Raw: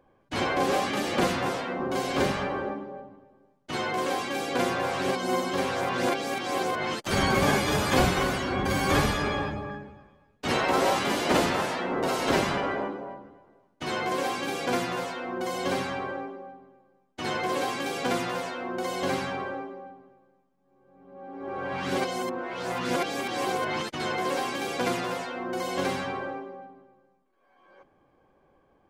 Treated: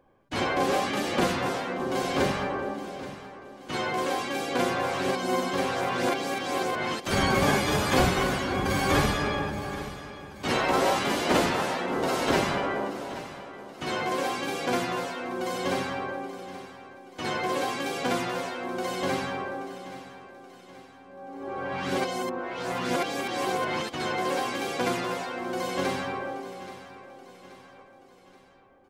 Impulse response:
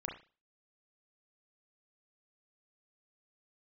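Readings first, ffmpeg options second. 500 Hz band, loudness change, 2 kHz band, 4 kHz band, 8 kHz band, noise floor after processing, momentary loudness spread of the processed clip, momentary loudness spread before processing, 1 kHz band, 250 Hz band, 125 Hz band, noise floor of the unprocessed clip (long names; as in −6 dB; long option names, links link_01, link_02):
0.0 dB, 0.0 dB, 0.0 dB, 0.0 dB, 0.0 dB, −51 dBFS, 16 LU, 13 LU, 0.0 dB, 0.0 dB, 0.0 dB, −66 dBFS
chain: -af "aecho=1:1:828|1656|2484|3312:0.188|0.0885|0.0416|0.0196"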